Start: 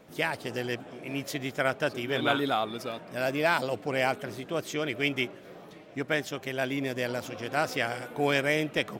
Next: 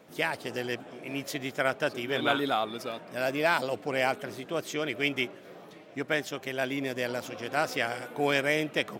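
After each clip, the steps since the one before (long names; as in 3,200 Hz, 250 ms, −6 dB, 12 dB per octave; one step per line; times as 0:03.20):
high-pass filter 160 Hz 6 dB per octave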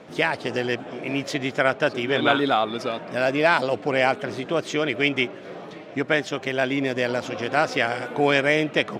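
in parallel at −2.5 dB: downward compressor, threshold −36 dBFS, peak gain reduction 15 dB
on the sum: high-frequency loss of the air 79 metres
level +6 dB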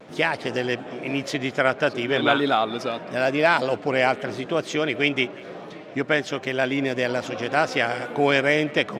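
pitch vibrato 0.44 Hz 21 cents
far-end echo of a speakerphone 190 ms, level −22 dB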